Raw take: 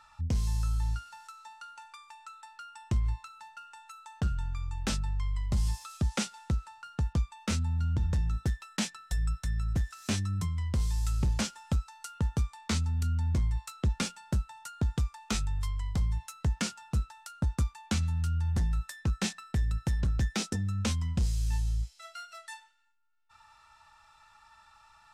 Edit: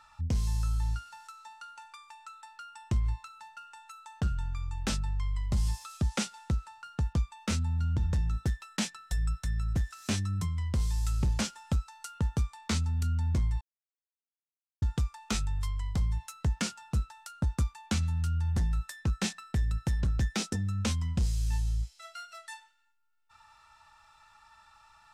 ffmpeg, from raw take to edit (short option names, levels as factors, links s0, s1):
-filter_complex "[0:a]asplit=3[s0][s1][s2];[s0]atrim=end=13.61,asetpts=PTS-STARTPTS,afade=t=out:st=13.606:d=0.004:c=hsin[s3];[s1]atrim=start=13.61:end=14.82,asetpts=PTS-STARTPTS,volume=0[s4];[s2]atrim=start=14.82,asetpts=PTS-STARTPTS,afade=t=in:d=0.004:c=hsin[s5];[s3][s4][s5]concat=n=3:v=0:a=1"